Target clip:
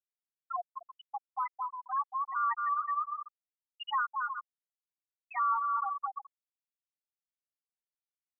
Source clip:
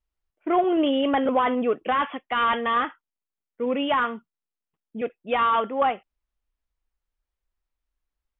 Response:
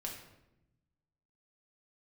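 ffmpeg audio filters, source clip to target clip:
-af "aecho=1:1:220|352|431.2|478.7|507.2:0.631|0.398|0.251|0.158|0.1,aresample=16000,aeval=exprs='clip(val(0),-1,0.119)':channel_layout=same,aresample=44100,highpass=frequency=970:width=0.5412,highpass=frequency=970:width=1.3066,alimiter=limit=-18dB:level=0:latency=1:release=219,acontrast=47,afftfilt=real='re*gte(hypot(re,im),0.447)':imag='im*gte(hypot(re,im),0.447)':win_size=1024:overlap=0.75,volume=-9dB"

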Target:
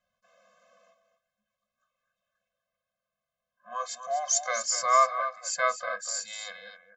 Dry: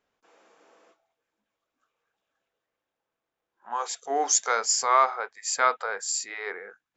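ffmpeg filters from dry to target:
ffmpeg -i in.wav -filter_complex "[0:a]asettb=1/sr,asplit=3[link_01][link_02][link_03];[link_01]atrim=end=6.254[link_04];[link_02]atrim=start=6.25:end=6.66,asetpts=PTS-STARTPTS,afade=type=in:duration=0.004:curve=qsin,afade=type=out:start_time=0.406:duration=0.004:curve=qsin,highshelf=frequency=2600:width_type=q:width=3:gain=8.5[link_05];[link_03]atrim=start=6.656[link_06];[link_04][link_05]acrossfade=duration=0.004:curve1=hsin:curve2=qsin[link_07];[link_07][link_06]acrossfade=duration=0.004:curve1=qsin:curve2=hsin,aecho=1:1:245:0.299,afftfilt=real='re*eq(mod(floor(b*sr/1024/250),2),0)':imag='im*eq(mod(floor(b*sr/1024/250),2),0)':win_size=1024:overlap=0.75" out.wav

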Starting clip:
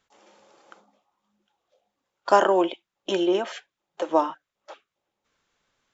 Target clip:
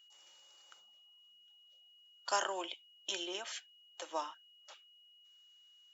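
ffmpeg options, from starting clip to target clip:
ffmpeg -i in.wav -af "aderivative,aeval=exprs='val(0)+0.000708*sin(2*PI*2900*n/s)':channel_layout=same,volume=2dB" out.wav

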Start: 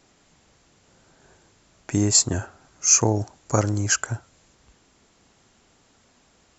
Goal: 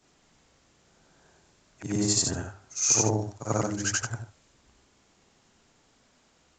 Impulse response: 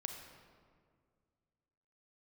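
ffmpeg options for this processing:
-af "afftfilt=real='re':imag='-im':win_size=8192:overlap=0.75,bandreject=frequency=50:width_type=h:width=6,bandreject=frequency=100:width_type=h:width=6" -ar 16000 -c:a g722

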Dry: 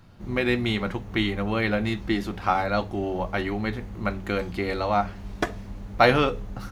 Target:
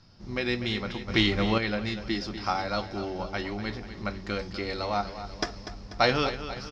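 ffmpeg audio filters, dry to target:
ffmpeg -i in.wav -filter_complex "[0:a]aecho=1:1:244|488|732|976|1220|1464:0.266|0.144|0.0776|0.0419|0.0226|0.0122,asettb=1/sr,asplit=3[link_01][link_02][link_03];[link_01]atrim=end=1.084[link_04];[link_02]atrim=start=1.08:end=1.58,asetpts=PTS-STARTPTS,afade=type=in:duration=0.004:curve=qsin,afade=type=out:start_time=0.496:duration=0.004:curve=qsin,acontrast=86[link_05];[link_03]atrim=start=1.576[link_06];[link_04][link_05]acrossfade=duration=0.004:curve1=hsin:curve2=qsin[link_07];[link_07][link_06]acrossfade=duration=0.004:curve1=qsin:curve2=hsin,lowpass=frequency=5200:width_type=q:width=13,volume=-6dB" out.wav

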